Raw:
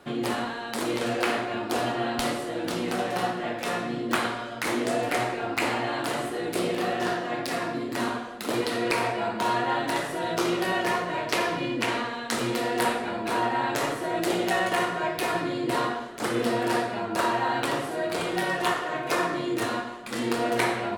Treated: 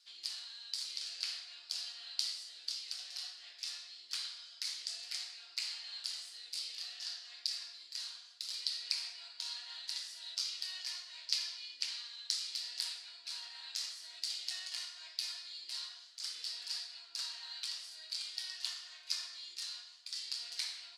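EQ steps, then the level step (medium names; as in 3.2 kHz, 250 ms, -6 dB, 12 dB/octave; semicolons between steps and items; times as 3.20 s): ladder band-pass 5.1 kHz, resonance 70%; +5.0 dB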